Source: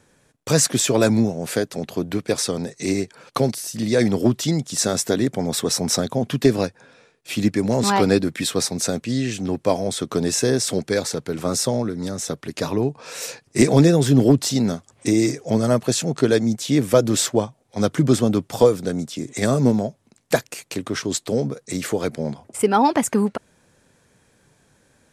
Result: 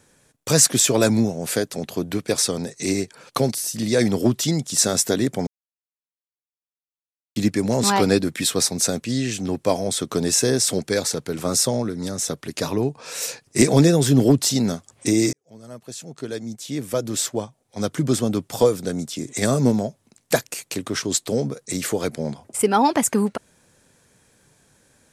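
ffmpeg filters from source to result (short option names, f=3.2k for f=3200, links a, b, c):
-filter_complex "[0:a]asplit=4[a][b][c][d];[a]atrim=end=5.47,asetpts=PTS-STARTPTS,afade=t=out:st=5.466:d=0.004:c=hsin[e];[b]atrim=start=5.47:end=7.36,asetpts=PTS-STARTPTS,volume=0[f];[c]atrim=start=7.36:end=15.33,asetpts=PTS-STARTPTS,afade=t=in:d=0.004:c=hsin,afade=t=out:st=7.966:d=0.004:c=hsin[g];[d]atrim=start=15.33,asetpts=PTS-STARTPTS,afade=t=in:d=3.89[h];[e][f][g][h]concat=n=4:v=0:a=1,highshelf=f=4.8k:g=7,volume=-1dB"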